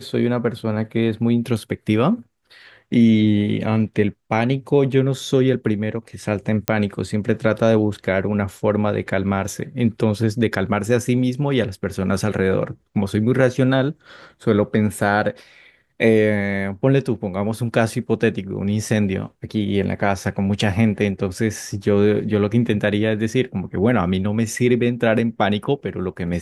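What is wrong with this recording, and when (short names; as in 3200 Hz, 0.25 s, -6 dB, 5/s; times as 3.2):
6.68 pop -2 dBFS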